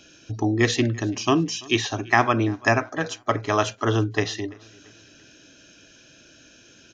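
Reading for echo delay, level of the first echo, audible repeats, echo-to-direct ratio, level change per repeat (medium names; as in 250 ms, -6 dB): 338 ms, -24.0 dB, 2, -23.0 dB, -7.5 dB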